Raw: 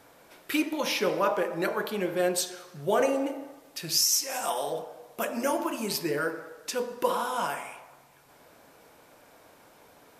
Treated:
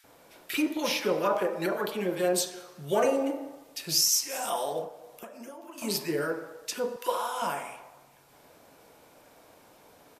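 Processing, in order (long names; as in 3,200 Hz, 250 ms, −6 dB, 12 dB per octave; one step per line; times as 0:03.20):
0:04.84–0:05.78: downward compressor 8 to 1, threshold −42 dBFS, peak gain reduction 18.5 dB
0:06.92–0:07.38: high-pass filter 530 Hz 12 dB per octave
multiband delay without the direct sound highs, lows 40 ms, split 1,600 Hz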